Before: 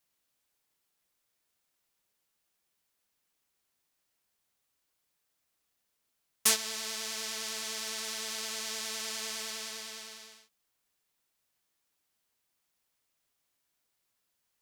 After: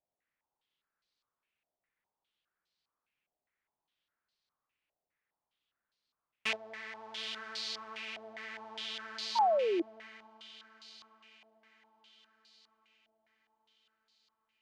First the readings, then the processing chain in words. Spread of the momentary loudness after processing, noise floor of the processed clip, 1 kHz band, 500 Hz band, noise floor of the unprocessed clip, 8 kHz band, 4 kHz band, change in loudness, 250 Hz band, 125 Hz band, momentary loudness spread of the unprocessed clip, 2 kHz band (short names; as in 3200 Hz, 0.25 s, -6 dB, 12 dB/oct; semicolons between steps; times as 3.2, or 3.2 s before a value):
23 LU, under -85 dBFS, +10.5 dB, +10.5 dB, -80 dBFS, -21.0 dB, -5.0 dB, -2.5 dB, +6.5 dB, n/a, 15 LU, -1.5 dB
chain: diffused feedback echo 0.855 s, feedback 54%, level -12 dB; painted sound fall, 9.35–9.82, 320–970 Hz -23 dBFS; stepped low-pass 4.9 Hz 690–4300 Hz; gain -7.5 dB